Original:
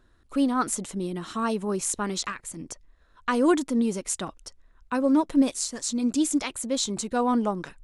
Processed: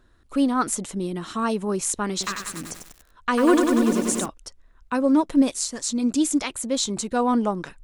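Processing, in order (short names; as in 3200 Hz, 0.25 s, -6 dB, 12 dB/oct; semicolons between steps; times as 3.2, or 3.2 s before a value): 2.11–4.26 lo-fi delay 96 ms, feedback 80%, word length 7-bit, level -5 dB; gain +2.5 dB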